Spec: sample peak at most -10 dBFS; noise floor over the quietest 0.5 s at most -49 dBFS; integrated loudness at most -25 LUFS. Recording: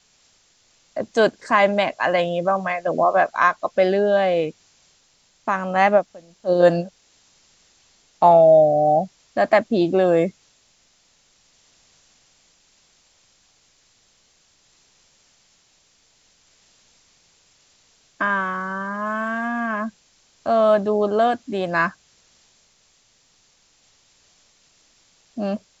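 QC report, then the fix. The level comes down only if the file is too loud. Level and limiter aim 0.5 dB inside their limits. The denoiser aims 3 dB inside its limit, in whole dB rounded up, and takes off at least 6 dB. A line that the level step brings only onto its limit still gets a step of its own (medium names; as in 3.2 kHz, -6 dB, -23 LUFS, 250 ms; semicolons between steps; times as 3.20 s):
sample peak -3.5 dBFS: fail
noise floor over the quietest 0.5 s -60 dBFS: pass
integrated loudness -19.5 LUFS: fail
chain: trim -6 dB; peak limiter -10.5 dBFS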